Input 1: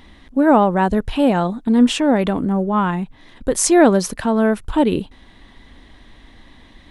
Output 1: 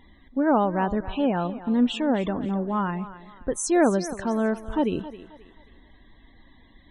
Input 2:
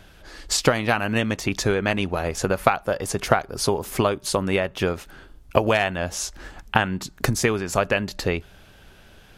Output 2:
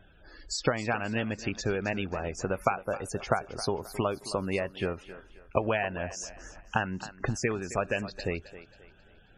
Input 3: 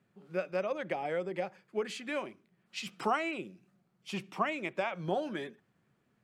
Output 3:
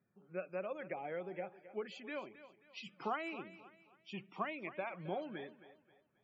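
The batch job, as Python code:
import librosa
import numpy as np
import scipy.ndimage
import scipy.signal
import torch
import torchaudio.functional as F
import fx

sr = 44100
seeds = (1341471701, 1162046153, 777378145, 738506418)

y = fx.spec_topn(x, sr, count=64)
y = fx.echo_thinned(y, sr, ms=267, feedback_pct=38, hz=260.0, wet_db=-14)
y = y * 10.0 ** (-8.0 / 20.0)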